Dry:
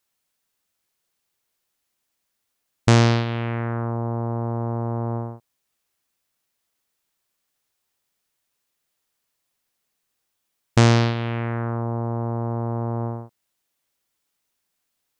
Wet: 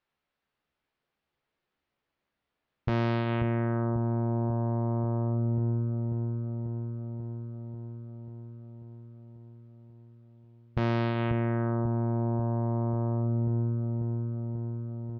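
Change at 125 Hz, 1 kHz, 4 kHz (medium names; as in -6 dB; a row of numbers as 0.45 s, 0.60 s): -4.0 dB, -7.5 dB, under -15 dB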